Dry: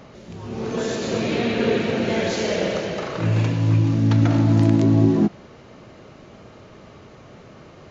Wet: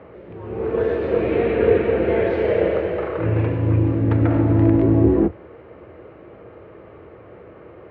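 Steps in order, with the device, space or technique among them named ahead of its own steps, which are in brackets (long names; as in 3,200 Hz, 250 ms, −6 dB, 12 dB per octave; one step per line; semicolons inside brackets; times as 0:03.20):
sub-octave bass pedal (sub-octave generator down 2 octaves, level −1 dB; loudspeaker in its box 78–2,300 Hz, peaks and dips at 82 Hz +3 dB, 150 Hz −8 dB, 230 Hz −8 dB, 340 Hz +6 dB, 480 Hz +8 dB)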